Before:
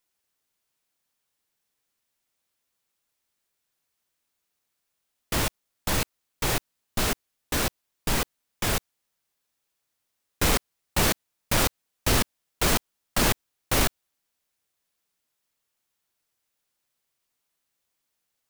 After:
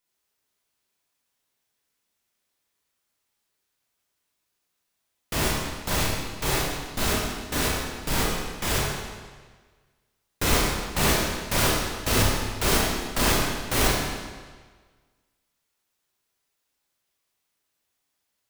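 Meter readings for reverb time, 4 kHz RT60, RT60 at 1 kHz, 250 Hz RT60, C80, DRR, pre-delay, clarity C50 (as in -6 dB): 1.5 s, 1.3 s, 1.5 s, 1.4 s, 2.0 dB, -4.5 dB, 29 ms, -0.5 dB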